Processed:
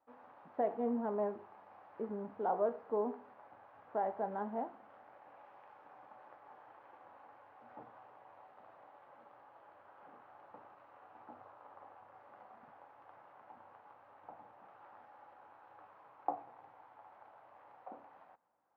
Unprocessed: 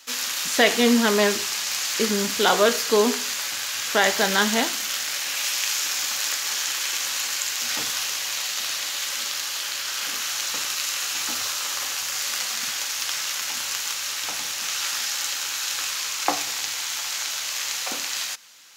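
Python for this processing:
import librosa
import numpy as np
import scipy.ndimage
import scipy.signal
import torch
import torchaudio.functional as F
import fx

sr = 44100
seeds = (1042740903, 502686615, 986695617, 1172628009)

y = fx.ladder_lowpass(x, sr, hz=930.0, resonance_pct=50)
y = y * librosa.db_to_amplitude(-8.5)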